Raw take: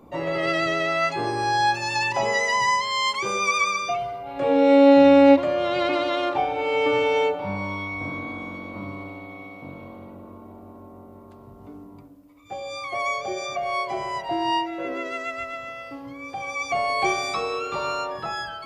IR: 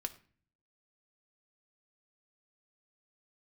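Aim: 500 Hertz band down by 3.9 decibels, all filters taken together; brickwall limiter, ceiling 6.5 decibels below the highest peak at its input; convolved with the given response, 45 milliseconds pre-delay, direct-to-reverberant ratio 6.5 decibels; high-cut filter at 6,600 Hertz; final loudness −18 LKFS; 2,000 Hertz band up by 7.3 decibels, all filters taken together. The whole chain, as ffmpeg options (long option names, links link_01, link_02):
-filter_complex "[0:a]lowpass=6600,equalizer=frequency=500:width_type=o:gain=-5,equalizer=frequency=2000:width_type=o:gain=8.5,alimiter=limit=-12.5dB:level=0:latency=1,asplit=2[link_01][link_02];[1:a]atrim=start_sample=2205,adelay=45[link_03];[link_02][link_03]afir=irnorm=-1:irlink=0,volume=-5.5dB[link_04];[link_01][link_04]amix=inputs=2:normalize=0,volume=3.5dB"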